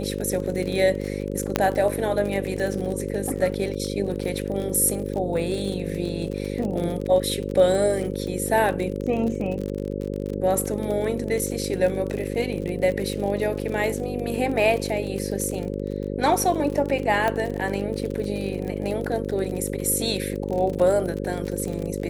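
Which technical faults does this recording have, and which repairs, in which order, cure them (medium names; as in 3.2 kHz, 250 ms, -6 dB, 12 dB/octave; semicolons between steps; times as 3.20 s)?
buzz 50 Hz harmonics 11 -29 dBFS
crackle 41 per s -28 dBFS
1.56 s: pop -4 dBFS
17.28 s: pop -11 dBFS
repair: de-click; de-hum 50 Hz, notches 11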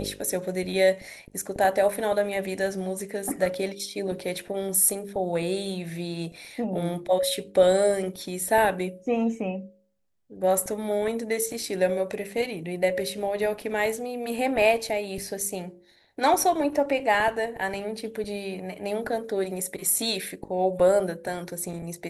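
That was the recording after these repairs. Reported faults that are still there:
nothing left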